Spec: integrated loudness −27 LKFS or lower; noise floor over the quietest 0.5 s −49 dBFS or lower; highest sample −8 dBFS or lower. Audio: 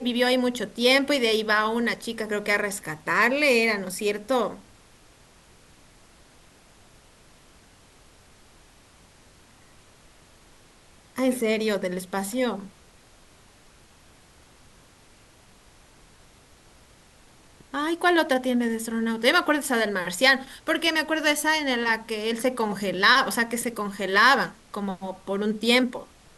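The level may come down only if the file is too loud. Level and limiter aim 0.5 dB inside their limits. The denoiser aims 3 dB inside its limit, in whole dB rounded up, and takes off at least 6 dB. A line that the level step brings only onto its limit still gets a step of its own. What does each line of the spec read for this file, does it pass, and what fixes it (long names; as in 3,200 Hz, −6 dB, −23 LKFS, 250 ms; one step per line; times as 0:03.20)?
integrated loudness −23.5 LKFS: out of spec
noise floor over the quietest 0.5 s −54 dBFS: in spec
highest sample −4.5 dBFS: out of spec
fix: level −4 dB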